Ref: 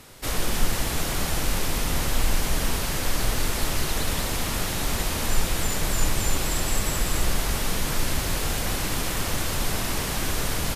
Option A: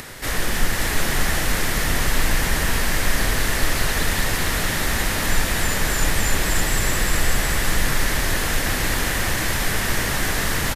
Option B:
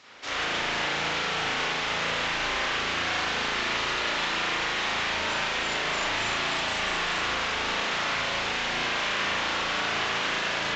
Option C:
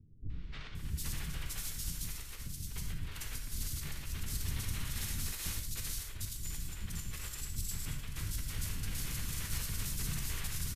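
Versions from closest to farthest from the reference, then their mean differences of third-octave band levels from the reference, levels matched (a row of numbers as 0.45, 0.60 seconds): A, C, B; 2.0, 8.0, 11.5 decibels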